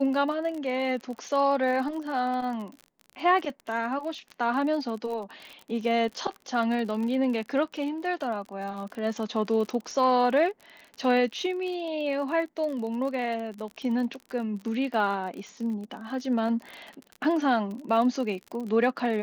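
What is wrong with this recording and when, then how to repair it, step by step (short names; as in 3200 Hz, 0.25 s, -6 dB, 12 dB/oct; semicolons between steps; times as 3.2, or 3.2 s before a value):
crackle 39/s -34 dBFS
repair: de-click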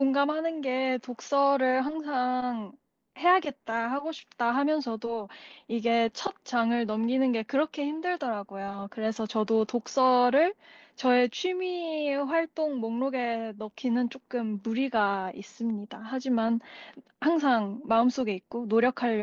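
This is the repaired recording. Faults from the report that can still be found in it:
none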